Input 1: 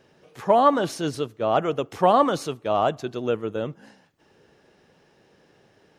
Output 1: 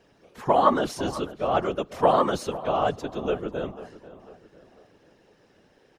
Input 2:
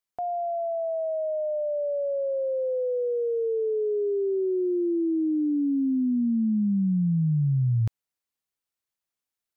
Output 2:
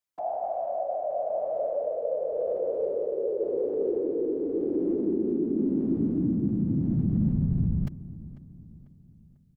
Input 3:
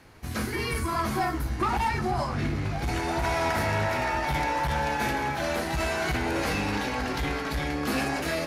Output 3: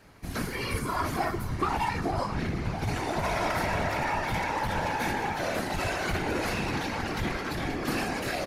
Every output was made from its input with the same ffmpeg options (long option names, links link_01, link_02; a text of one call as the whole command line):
ffmpeg -i in.wav -filter_complex "[0:a]afftfilt=real='hypot(re,im)*cos(2*PI*random(0))':imag='hypot(re,im)*sin(2*PI*random(1))':win_size=512:overlap=0.75,asplit=2[link_01][link_02];[link_02]adelay=495,lowpass=frequency=2300:poles=1,volume=-16dB,asplit=2[link_03][link_04];[link_04]adelay=495,lowpass=frequency=2300:poles=1,volume=0.46,asplit=2[link_05][link_06];[link_06]adelay=495,lowpass=frequency=2300:poles=1,volume=0.46,asplit=2[link_07][link_08];[link_08]adelay=495,lowpass=frequency=2300:poles=1,volume=0.46[link_09];[link_01][link_03][link_05][link_07][link_09]amix=inputs=5:normalize=0,volume=4dB" out.wav